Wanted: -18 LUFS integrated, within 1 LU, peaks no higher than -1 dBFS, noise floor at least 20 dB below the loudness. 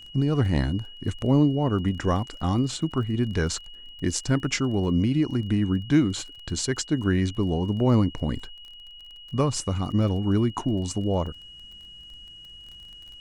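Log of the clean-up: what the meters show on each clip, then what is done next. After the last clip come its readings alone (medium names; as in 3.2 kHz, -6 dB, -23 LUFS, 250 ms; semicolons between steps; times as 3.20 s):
tick rate 23 per s; steady tone 2.9 kHz; tone level -43 dBFS; loudness -25.5 LUFS; peak level -8.5 dBFS; loudness target -18.0 LUFS
-> de-click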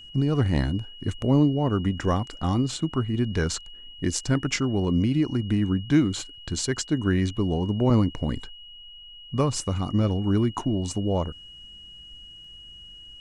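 tick rate 0.076 per s; steady tone 2.9 kHz; tone level -43 dBFS
-> band-stop 2.9 kHz, Q 30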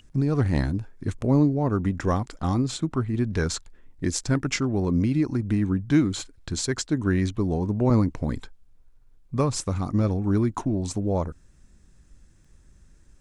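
steady tone not found; loudness -25.5 LUFS; peak level -9.0 dBFS; loudness target -18.0 LUFS
-> trim +7.5 dB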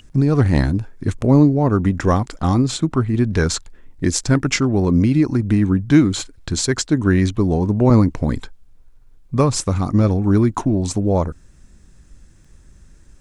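loudness -18.0 LUFS; peak level -1.5 dBFS; noise floor -48 dBFS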